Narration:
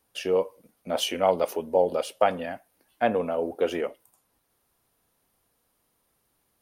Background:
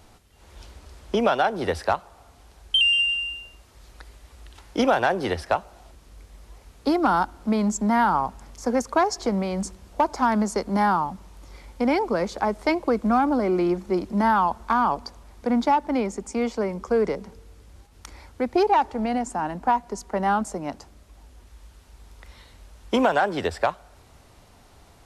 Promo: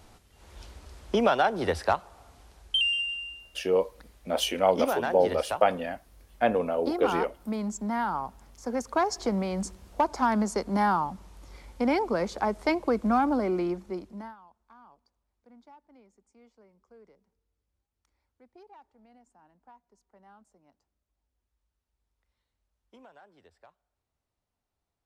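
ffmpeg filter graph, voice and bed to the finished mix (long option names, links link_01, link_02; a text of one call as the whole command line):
ffmpeg -i stem1.wav -i stem2.wav -filter_complex "[0:a]adelay=3400,volume=-0.5dB[link_01];[1:a]volume=3.5dB,afade=type=out:start_time=2.35:duration=0.68:silence=0.446684,afade=type=in:start_time=8.64:duration=0.54:silence=0.530884,afade=type=out:start_time=13.32:duration=1.04:silence=0.0316228[link_02];[link_01][link_02]amix=inputs=2:normalize=0" out.wav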